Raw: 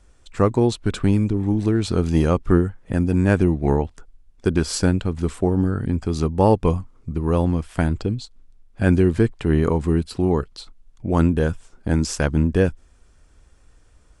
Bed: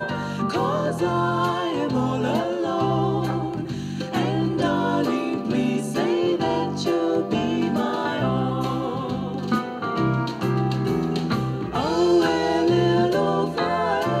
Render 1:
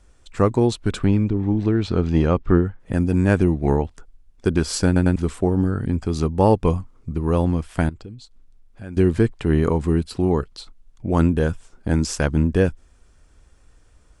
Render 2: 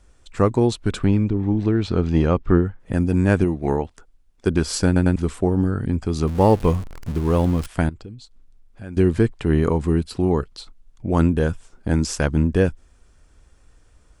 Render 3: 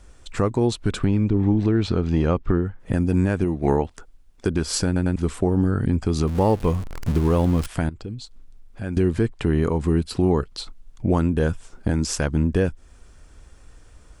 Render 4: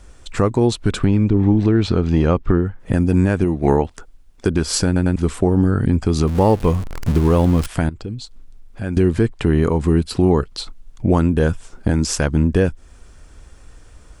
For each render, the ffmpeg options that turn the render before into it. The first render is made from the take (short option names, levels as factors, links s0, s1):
-filter_complex "[0:a]asettb=1/sr,asplit=3[s0][s1][s2];[s0]atrim=end=1.044[s3];[s1]atrim=start=1.04:end=2.8,asetpts=PTS-STARTPTS,afade=t=in:d=0.004:c=qsin,afade=t=out:st=1.756:d=0.004:c=qsin,lowpass=3900[s4];[s2]atrim=start=2.796[s5];[s3][s4]acrossfade=d=0.004:c1=hsin:c2=qsin[s6];[s6][s5]acrossfade=d=0.004:c1=qsin:c2=hsin,asettb=1/sr,asplit=3[s7][s8][s9];[s7]atrim=end=7.894[s10];[s8]atrim=start=7.89:end=8.97,asetpts=PTS-STARTPTS,afade=t=in:d=0.004:c=qsin,afade=t=out:st=1.076:d=0.004:c=qsin,acompressor=threshold=0.00562:ratio=2:attack=3.2:release=140:knee=1:detection=peak[s11];[s9]atrim=start=8.966[s12];[s10][s11]acrossfade=d=0.004:c1=hsin:c2=qsin[s13];[s13][s12]acrossfade=d=0.004:c1=qsin:c2=hsin,asplit=4[s14][s15][s16][s17];[s14]atrim=end=4.962[s18];[s15]atrim=start=4.858:end=4.962[s19];[s16]atrim=start=4.858:end=4.962[s20];[s17]atrim=start=5.158[s21];[s18][s19]acrossfade=d=0.004:c1=hsin:c2=hsin[s22];[s22][s20]acrossfade=d=0.004:c1=hsin:c2=hsin[s23];[s23][s21]acrossfade=d=0.004:c1=hsin:c2=hsin"
-filter_complex "[0:a]asettb=1/sr,asplit=3[s0][s1][s2];[s0]atrim=end=3.444[s3];[s1]atrim=start=3.44:end=4.47,asetpts=PTS-STARTPTS,afade=t=in:d=0.004:c=qsin,afade=t=out:st=1.026:d=0.004:c=qsin,lowshelf=f=180:g=-7.5[s4];[s2]atrim=start=4.466[s5];[s3][s4]acrossfade=d=0.004:c1=hsin:c2=qsin[s6];[s6][s5]acrossfade=d=0.004:c1=qsin:c2=hsin,asettb=1/sr,asplit=3[s7][s8][s9];[s7]atrim=end=6.274[s10];[s8]atrim=start=6.27:end=7.67,asetpts=PTS-STARTPTS,afade=t=in:d=0.004:c=qsin,afade=t=out:st=1.396:d=0.004:c=qsin,aeval=exprs='val(0)+0.5*0.0316*sgn(val(0))':c=same[s11];[s9]atrim=start=7.666[s12];[s10][s11]acrossfade=d=0.004:c1=hsin:c2=qsin[s13];[s13][s12]acrossfade=d=0.004:c1=qsin:c2=hsin"
-filter_complex "[0:a]asplit=2[s0][s1];[s1]acompressor=threshold=0.0562:ratio=6,volume=0.944[s2];[s0][s2]amix=inputs=2:normalize=0,alimiter=limit=0.335:level=0:latency=1:release=337"
-af "volume=1.68"